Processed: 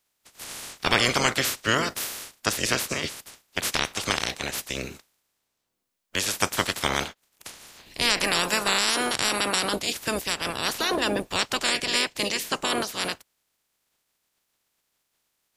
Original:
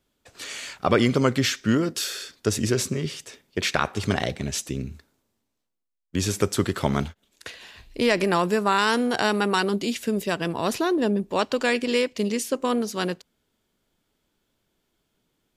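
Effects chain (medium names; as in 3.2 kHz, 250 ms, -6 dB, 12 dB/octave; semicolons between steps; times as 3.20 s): spectral peaks clipped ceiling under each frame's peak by 28 dB; trim -2 dB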